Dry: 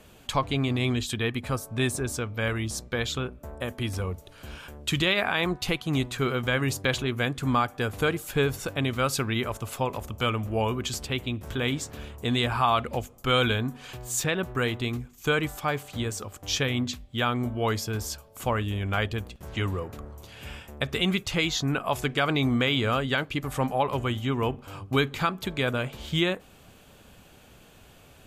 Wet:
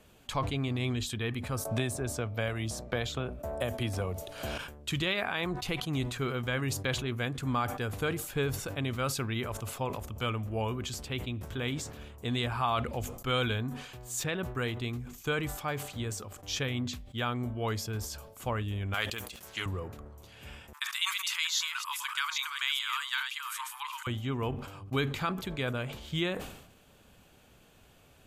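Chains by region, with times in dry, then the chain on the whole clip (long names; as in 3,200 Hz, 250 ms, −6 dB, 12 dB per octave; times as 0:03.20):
0:01.65–0:04.58: parametric band 650 Hz +10.5 dB 0.48 octaves + multiband upward and downward compressor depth 100%
0:18.94–0:19.66: spectral tilt +4 dB per octave + highs frequency-modulated by the lows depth 0.11 ms
0:20.73–0:24.07: delay that plays each chunk backwards 412 ms, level −6.5 dB + Chebyshev high-pass filter 910 Hz, order 8 + parametric band 12,000 Hz +10 dB 2.3 octaves
whole clip: dynamic equaliser 100 Hz, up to +3 dB, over −39 dBFS, Q 1.4; level that may fall only so fast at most 68 dB per second; level −7 dB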